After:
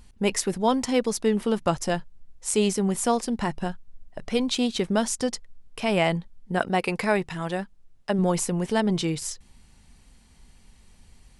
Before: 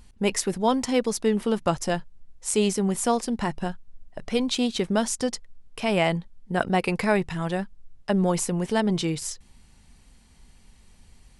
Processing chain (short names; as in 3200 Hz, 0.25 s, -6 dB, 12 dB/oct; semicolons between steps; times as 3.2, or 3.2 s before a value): 6.58–8.19 low shelf 150 Hz -8 dB